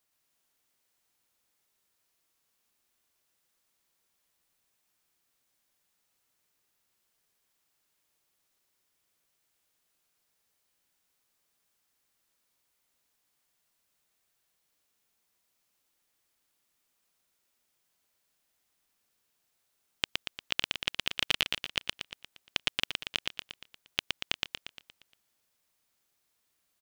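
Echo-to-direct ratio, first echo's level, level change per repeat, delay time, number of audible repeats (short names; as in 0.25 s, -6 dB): -1.5 dB, -3.0 dB, -5.5 dB, 0.117 s, 6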